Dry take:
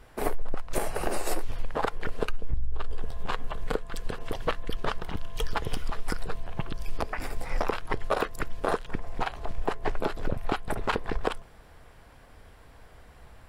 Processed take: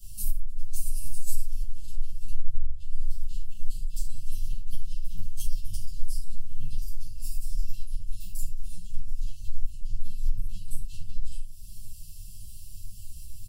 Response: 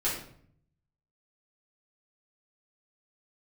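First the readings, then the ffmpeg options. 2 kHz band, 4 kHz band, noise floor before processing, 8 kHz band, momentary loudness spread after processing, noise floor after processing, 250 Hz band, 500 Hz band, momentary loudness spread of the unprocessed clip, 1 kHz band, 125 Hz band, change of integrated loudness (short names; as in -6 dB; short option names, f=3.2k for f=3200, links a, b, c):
-28.5 dB, -10.0 dB, -53 dBFS, +2.0 dB, 10 LU, -40 dBFS, -17.0 dB, under -40 dB, 8 LU, under -40 dB, +0.5 dB, -6.0 dB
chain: -filter_complex "[0:a]acrossover=split=160[a][b];[b]acompressor=threshold=-34dB:ratio=3[c];[a][c]amix=inputs=2:normalize=0[d];[1:a]atrim=start_sample=2205,afade=t=out:st=0.18:d=0.01,atrim=end_sample=8379[e];[d][e]afir=irnorm=-1:irlink=0,aexciter=amount=7.3:drive=3.8:freq=4.8k,afftfilt=real='re*(1-between(b*sr/4096,210,2600))':imag='im*(1-between(b*sr/4096,210,2600))':win_size=4096:overlap=0.75,aeval=exprs='2.66*(cos(1*acos(clip(val(0)/2.66,-1,1)))-cos(1*PI/2))+0.422*(cos(2*acos(clip(val(0)/2.66,-1,1)))-cos(2*PI/2))':c=same,acompressor=threshold=-30dB:ratio=2,lowshelf=f=140:g=6,asplit=2[f][g];[g]adelay=8.2,afreqshift=1.7[h];[f][h]amix=inputs=2:normalize=1,volume=-2dB"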